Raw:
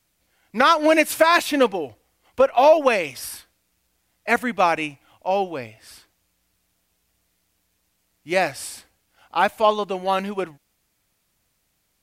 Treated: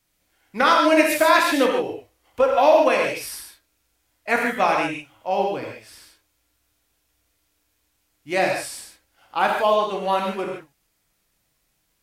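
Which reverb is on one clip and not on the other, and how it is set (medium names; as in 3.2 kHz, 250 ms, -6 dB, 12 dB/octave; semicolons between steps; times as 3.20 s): gated-style reverb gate 180 ms flat, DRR -0.5 dB; trim -3 dB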